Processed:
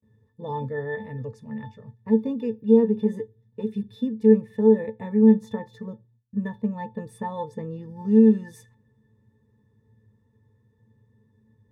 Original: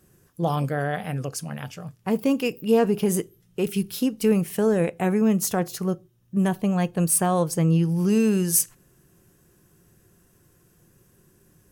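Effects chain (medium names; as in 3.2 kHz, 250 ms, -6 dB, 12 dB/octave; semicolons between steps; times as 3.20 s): gate with hold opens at -52 dBFS; pitch-class resonator A, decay 0.12 s; trim +6.5 dB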